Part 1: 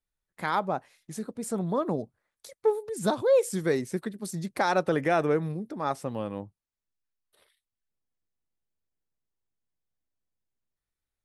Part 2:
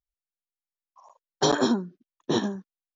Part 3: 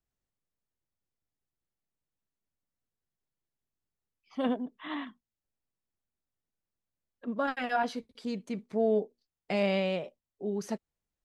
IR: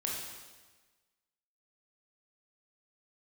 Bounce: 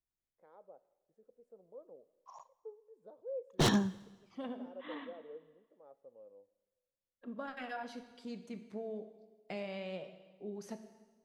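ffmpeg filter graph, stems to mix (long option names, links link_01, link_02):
-filter_complex "[0:a]bandpass=frequency=510:width_type=q:width=6.2:csg=0,volume=-19dB,asplit=2[link_01][link_02];[link_02]volume=-18dB[link_03];[1:a]agate=range=-7dB:threshold=-54dB:ratio=16:detection=peak,equalizer=frequency=125:width_type=o:width=1:gain=10,equalizer=frequency=250:width_type=o:width=1:gain=-5,equalizer=frequency=500:width_type=o:width=1:gain=-7,aeval=exprs='0.0708*(abs(mod(val(0)/0.0708+3,4)-2)-1)':channel_layout=same,adelay=1300,volume=1.5dB,asplit=3[link_04][link_05][link_06];[link_04]atrim=end=2.6,asetpts=PTS-STARTPTS,afade=type=out:start_time=2.596:duration=0.004:curve=hsin[link_07];[link_05]atrim=start=2.6:end=3.48,asetpts=PTS-STARTPTS,volume=0[link_08];[link_06]atrim=start=3.48,asetpts=PTS-STARTPTS,afade=type=in:duration=0.004:curve=hsin[link_09];[link_07][link_08][link_09]concat=n=3:v=0:a=1,asplit=2[link_10][link_11];[link_11]volume=-20.5dB[link_12];[2:a]acompressor=threshold=-30dB:ratio=5,volume=-11.5dB,asplit=2[link_13][link_14];[link_14]volume=-7.5dB[link_15];[3:a]atrim=start_sample=2205[link_16];[link_03][link_12][link_15]amix=inputs=3:normalize=0[link_17];[link_17][link_16]afir=irnorm=-1:irlink=0[link_18];[link_01][link_10][link_13][link_18]amix=inputs=4:normalize=0"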